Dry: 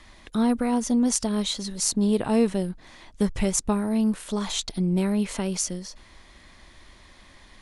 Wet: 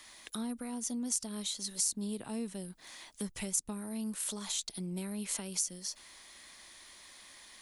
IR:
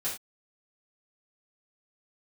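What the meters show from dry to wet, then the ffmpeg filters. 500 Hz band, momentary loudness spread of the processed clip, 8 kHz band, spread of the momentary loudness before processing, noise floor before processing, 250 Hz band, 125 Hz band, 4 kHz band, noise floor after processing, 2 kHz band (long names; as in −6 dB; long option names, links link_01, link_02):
−18.0 dB, 19 LU, −5.0 dB, 8 LU, −52 dBFS, −15.5 dB, −15.5 dB, −8.0 dB, −59 dBFS, −10.5 dB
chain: -filter_complex "[0:a]acrossover=split=260[link_01][link_02];[link_02]acompressor=threshold=-37dB:ratio=6[link_03];[link_01][link_03]amix=inputs=2:normalize=0,aemphasis=mode=production:type=riaa,volume=-5.5dB"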